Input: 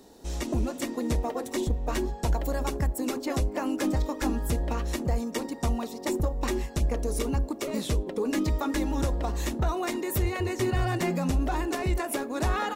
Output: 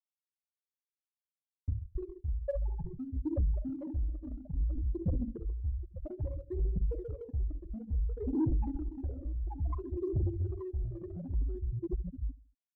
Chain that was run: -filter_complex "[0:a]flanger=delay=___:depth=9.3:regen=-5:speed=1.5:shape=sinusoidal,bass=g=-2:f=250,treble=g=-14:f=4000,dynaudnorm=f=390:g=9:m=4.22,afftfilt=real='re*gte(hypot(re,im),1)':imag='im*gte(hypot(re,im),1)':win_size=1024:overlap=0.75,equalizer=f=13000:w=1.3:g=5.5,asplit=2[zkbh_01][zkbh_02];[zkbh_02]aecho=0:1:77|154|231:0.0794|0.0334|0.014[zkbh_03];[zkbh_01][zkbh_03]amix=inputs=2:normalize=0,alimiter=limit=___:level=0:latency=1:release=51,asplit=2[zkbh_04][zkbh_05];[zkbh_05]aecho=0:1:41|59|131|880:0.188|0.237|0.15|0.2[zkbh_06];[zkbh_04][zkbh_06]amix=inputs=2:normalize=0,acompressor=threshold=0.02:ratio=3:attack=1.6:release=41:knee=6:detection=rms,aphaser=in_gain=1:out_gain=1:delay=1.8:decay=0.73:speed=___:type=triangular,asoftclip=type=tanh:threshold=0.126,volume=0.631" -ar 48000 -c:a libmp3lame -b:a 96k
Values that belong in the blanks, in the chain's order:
2.3, 0.2, 0.59